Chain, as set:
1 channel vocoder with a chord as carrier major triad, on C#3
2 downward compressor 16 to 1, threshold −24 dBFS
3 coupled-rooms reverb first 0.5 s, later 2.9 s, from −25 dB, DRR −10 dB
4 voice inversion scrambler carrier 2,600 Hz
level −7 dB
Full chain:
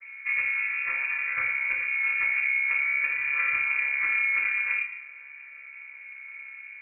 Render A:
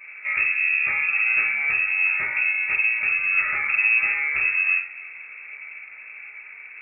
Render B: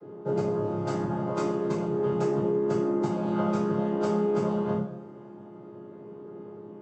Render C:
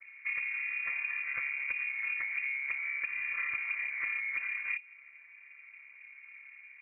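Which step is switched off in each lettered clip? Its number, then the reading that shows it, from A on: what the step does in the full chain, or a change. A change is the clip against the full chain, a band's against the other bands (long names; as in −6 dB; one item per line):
1, change in integrated loudness +5.0 LU
4, change in integrated loudness −3.5 LU
3, change in integrated loudness −8.5 LU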